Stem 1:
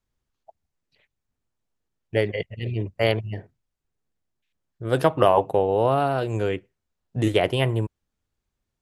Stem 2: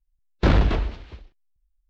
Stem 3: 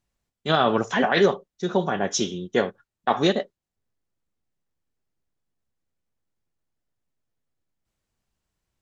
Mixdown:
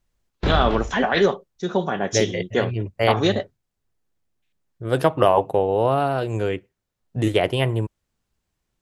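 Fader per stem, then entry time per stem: +1.0, -4.5, +0.5 dB; 0.00, 0.00, 0.00 s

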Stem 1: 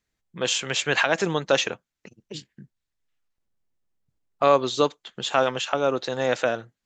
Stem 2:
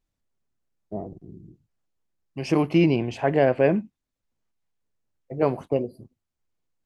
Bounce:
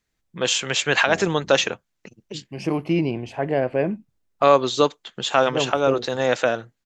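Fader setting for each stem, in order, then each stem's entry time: +3.0, -2.5 dB; 0.00, 0.15 s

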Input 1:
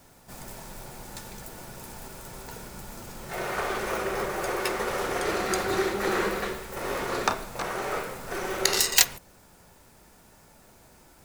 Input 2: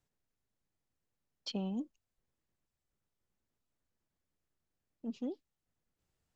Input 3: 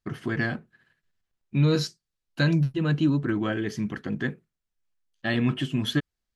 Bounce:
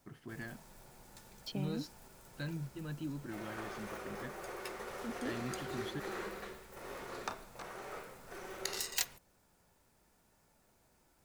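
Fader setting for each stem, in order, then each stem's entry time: -15.5, -3.5, -18.5 dB; 0.00, 0.00, 0.00 s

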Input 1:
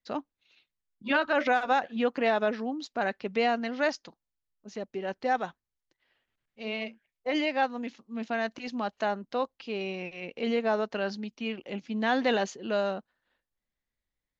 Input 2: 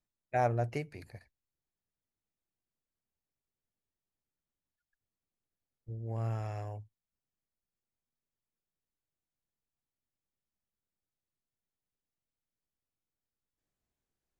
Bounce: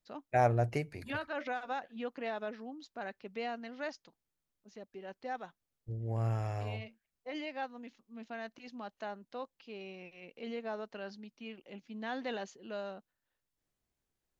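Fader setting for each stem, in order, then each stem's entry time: -12.5, +2.0 dB; 0.00, 0.00 s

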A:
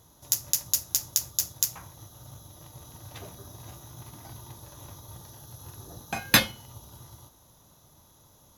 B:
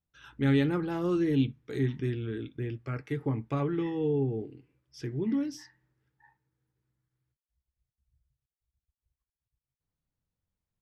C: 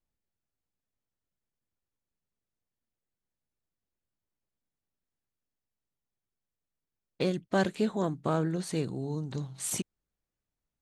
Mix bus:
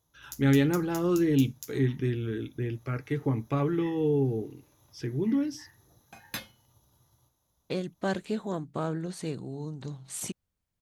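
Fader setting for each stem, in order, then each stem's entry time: -18.0, +2.5, -3.0 dB; 0.00, 0.00, 0.50 s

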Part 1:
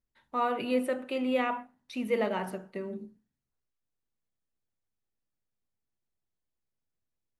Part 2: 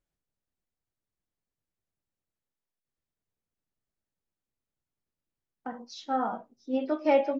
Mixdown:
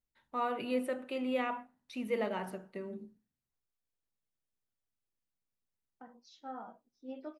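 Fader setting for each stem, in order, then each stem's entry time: -5.0, -15.5 dB; 0.00, 0.35 s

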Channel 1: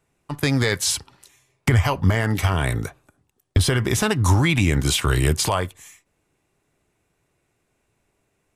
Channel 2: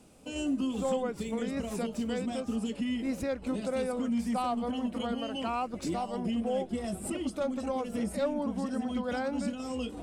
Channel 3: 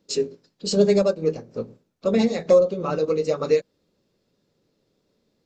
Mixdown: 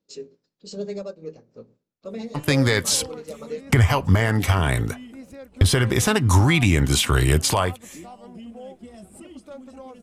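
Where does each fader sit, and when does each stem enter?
+1.0, -8.5, -13.5 dB; 2.05, 2.10, 0.00 s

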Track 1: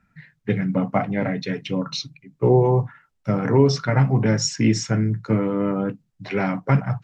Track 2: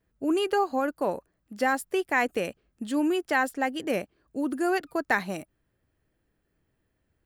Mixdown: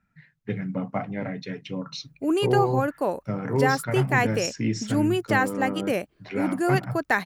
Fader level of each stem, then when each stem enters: -7.5, +2.0 dB; 0.00, 2.00 s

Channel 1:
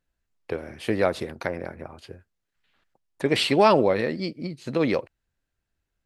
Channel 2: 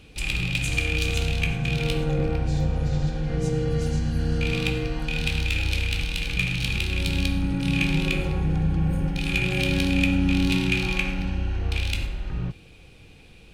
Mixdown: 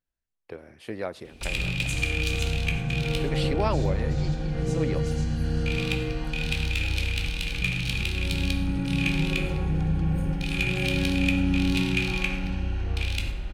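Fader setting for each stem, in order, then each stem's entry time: -10.0, -2.0 dB; 0.00, 1.25 s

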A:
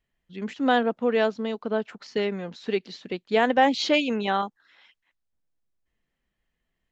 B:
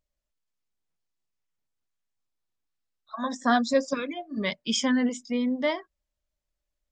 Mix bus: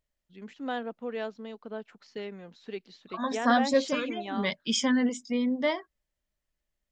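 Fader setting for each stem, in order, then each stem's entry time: -12.0, -1.0 dB; 0.00, 0.00 s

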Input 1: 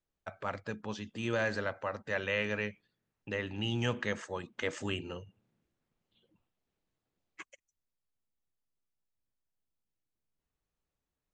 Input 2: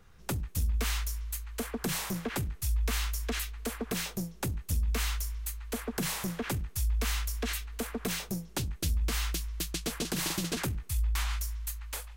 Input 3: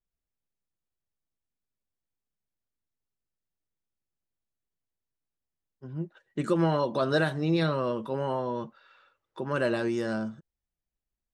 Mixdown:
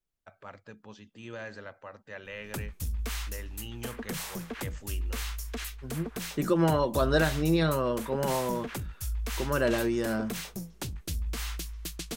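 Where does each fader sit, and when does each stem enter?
-9.0, -3.5, +0.5 dB; 0.00, 2.25, 0.00 s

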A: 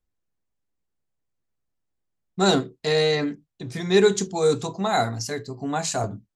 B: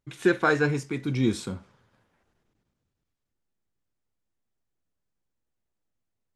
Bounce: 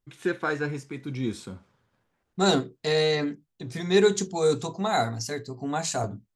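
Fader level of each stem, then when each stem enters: -2.5, -5.5 dB; 0.00, 0.00 s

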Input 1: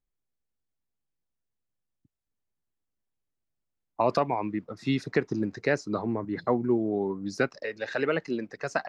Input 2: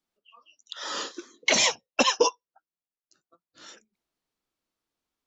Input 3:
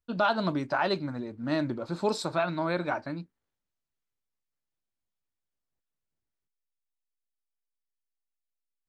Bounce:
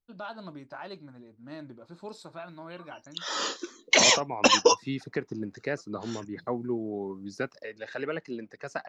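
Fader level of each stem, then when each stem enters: -6.0, +2.0, -14.0 dB; 0.00, 2.45, 0.00 s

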